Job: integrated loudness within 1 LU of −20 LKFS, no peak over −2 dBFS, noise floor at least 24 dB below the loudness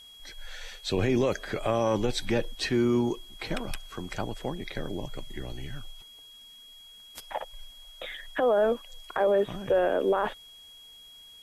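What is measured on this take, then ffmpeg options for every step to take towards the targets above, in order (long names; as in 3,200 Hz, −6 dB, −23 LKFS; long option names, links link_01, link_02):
interfering tone 3,300 Hz; level of the tone −48 dBFS; integrated loudness −29.0 LKFS; sample peak −15.5 dBFS; target loudness −20.0 LKFS
→ -af "bandreject=frequency=3300:width=30"
-af "volume=9dB"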